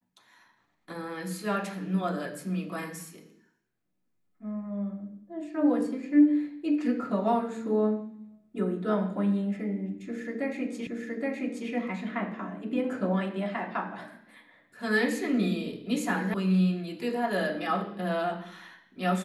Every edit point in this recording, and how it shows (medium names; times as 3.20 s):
10.87 s: repeat of the last 0.82 s
16.34 s: sound stops dead